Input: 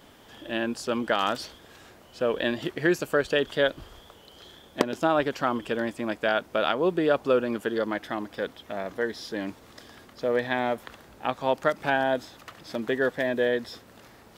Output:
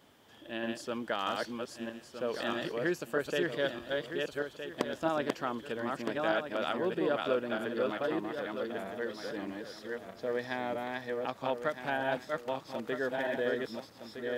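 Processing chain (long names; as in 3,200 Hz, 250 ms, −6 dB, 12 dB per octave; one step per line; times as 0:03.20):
feedback delay that plays each chunk backwards 632 ms, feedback 44%, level −2 dB
high-pass filter 74 Hz
level −9 dB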